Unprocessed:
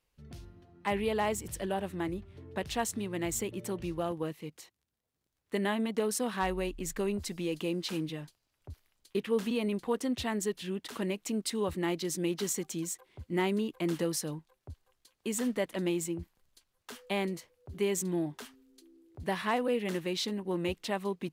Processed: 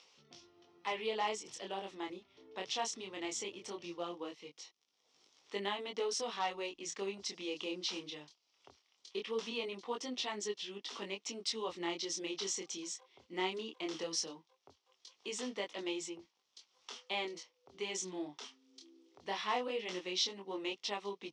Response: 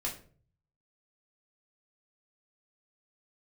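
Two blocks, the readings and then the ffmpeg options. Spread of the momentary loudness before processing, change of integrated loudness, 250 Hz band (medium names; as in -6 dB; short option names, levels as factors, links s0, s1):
14 LU, -6.0 dB, -12.0 dB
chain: -af "acompressor=mode=upward:threshold=0.00562:ratio=2.5,flanger=delay=19.5:depth=7.6:speed=0.19,highpass=480,equalizer=f=610:t=q:w=4:g=-6,equalizer=f=1600:t=q:w=4:g=-10,equalizer=f=3300:t=q:w=4:g=5,equalizer=f=5600:t=q:w=4:g=9,lowpass=f=6300:w=0.5412,lowpass=f=6300:w=1.3066,volume=1.12"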